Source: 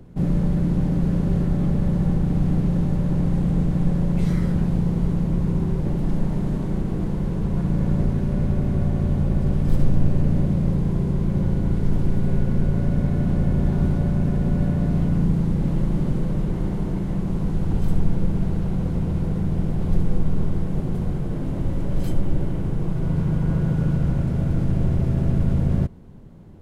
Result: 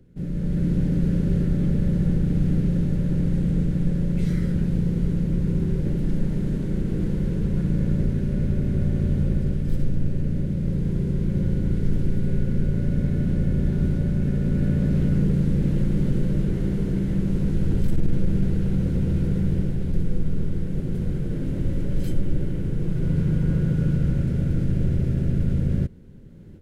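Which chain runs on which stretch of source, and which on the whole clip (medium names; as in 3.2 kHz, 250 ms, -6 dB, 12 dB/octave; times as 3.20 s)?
14.20–19.94 s: overload inside the chain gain 15 dB + doubling 15 ms -11 dB
whole clip: high-order bell 880 Hz -11 dB 1.1 oct; level rider; trim -9 dB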